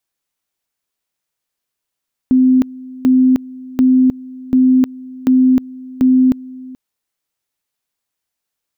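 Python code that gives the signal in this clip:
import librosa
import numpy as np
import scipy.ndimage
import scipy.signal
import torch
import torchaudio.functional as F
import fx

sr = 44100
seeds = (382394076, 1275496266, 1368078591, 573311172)

y = fx.two_level_tone(sr, hz=257.0, level_db=-7.0, drop_db=21.5, high_s=0.31, low_s=0.43, rounds=6)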